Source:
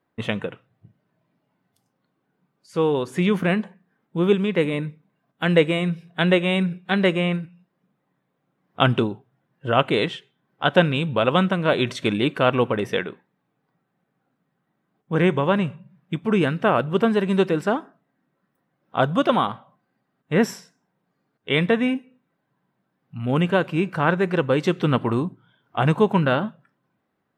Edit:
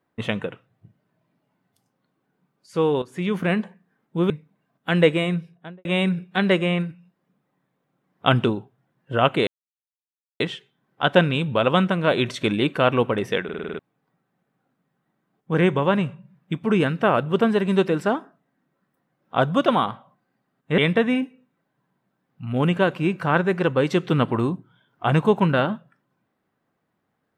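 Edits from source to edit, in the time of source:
3.02–3.58 fade in, from -12 dB
4.3–4.84 cut
5.77–6.39 studio fade out
10.01 insert silence 0.93 s
13.05 stutter in place 0.05 s, 7 plays
20.39–21.51 cut

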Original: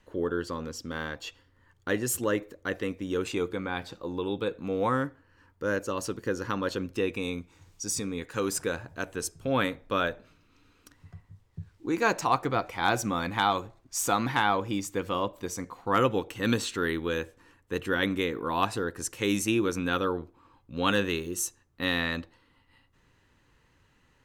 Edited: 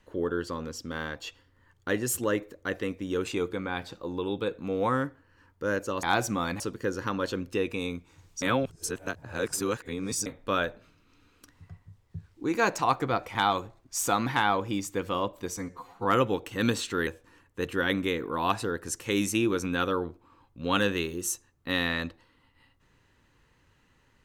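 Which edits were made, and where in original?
7.85–9.69 reverse
12.78–13.35 move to 6.03
15.57–15.89 stretch 1.5×
16.91–17.2 cut

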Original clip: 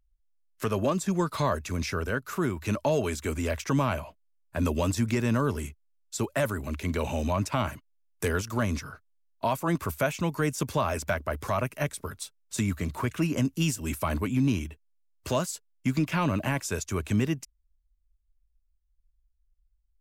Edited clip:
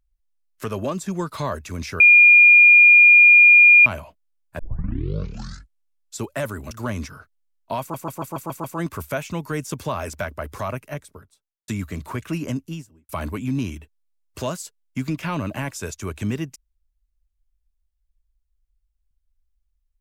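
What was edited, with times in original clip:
2–3.86 bleep 2420 Hz -7 dBFS
4.59 tape start 1.56 s
6.71–8.44 cut
9.53 stutter 0.14 s, 7 plays
11.5–12.57 studio fade out
13.31–13.98 studio fade out

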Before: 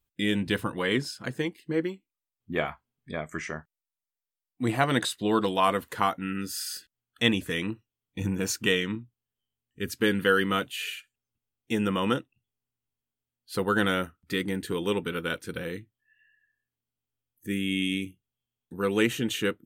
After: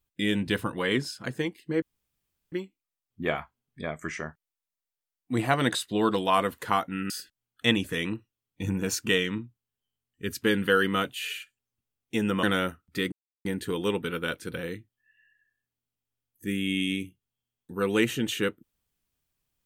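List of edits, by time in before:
1.82 insert room tone 0.70 s
6.4–6.67 cut
12–13.78 cut
14.47 insert silence 0.33 s

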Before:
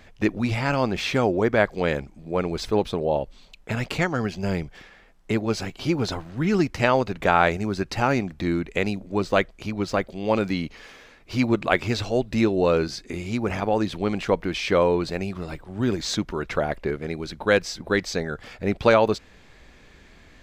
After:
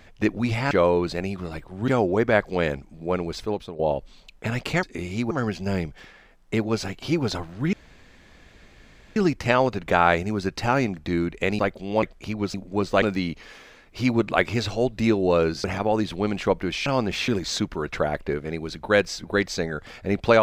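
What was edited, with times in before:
0.71–1.13 swap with 14.68–15.85
2.34–3.04 fade out, to -12.5 dB
6.5 insert room tone 1.43 s
8.93–9.41 swap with 9.92–10.36
12.98–13.46 move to 4.08

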